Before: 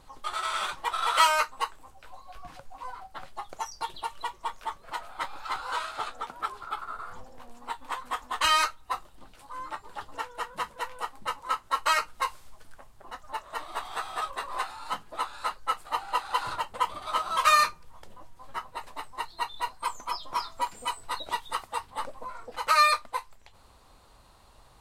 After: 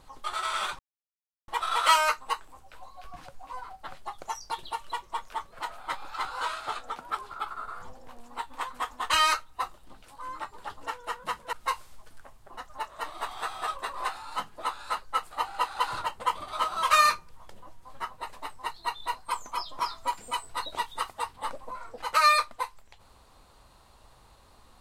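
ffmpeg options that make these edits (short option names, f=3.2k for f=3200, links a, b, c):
-filter_complex "[0:a]asplit=3[a][b][c];[a]atrim=end=0.79,asetpts=PTS-STARTPTS,afade=t=out:st=0.786:d=0.004:c=hsin,apad=pad_dur=0.69[d];[b]atrim=start=0.79:end=10.842,asetpts=PTS-STARTPTS,afade=t=in:d=0.004:c=hsin[e];[c]atrim=start=12.068[f];[d][e]concat=n=2:v=0:a=1[g];[g][f]acrossfade=d=0.004:c1=hsin:c2=hsin"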